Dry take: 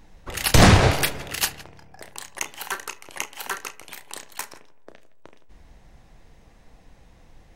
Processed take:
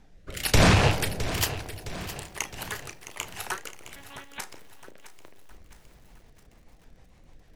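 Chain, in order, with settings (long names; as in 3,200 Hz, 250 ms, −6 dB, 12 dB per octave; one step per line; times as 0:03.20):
loose part that buzzes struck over −18 dBFS, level −11 dBFS
tape wow and flutter 150 cents
rotating-speaker cabinet horn 1.1 Hz, later 6.7 Hz, at 0:05.07
bucket-brigade delay 166 ms, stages 1,024, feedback 78%, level −18 dB
0:03.96–0:04.40: one-pitch LPC vocoder at 8 kHz 280 Hz
boost into a limiter +5.5 dB
feedback echo at a low word length 663 ms, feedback 55%, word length 7 bits, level −13 dB
level −7.5 dB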